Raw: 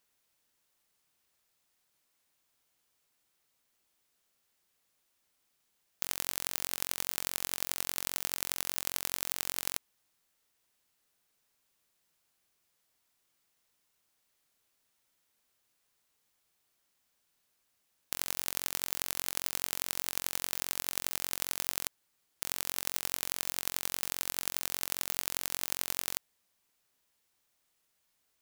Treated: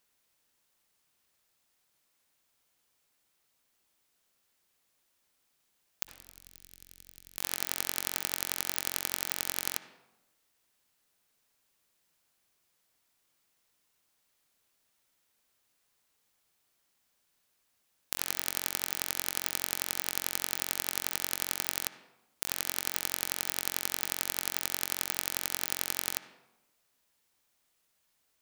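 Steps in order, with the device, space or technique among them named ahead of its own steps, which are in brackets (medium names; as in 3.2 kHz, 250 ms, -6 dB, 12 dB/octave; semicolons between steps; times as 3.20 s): 6.03–7.38 s: amplifier tone stack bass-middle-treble 10-0-1; filtered reverb send (on a send: high-pass 160 Hz 24 dB/octave + low-pass 3.6 kHz 12 dB/octave + reverberation RT60 0.95 s, pre-delay 55 ms, DRR 11 dB); on the sum: trim +1.5 dB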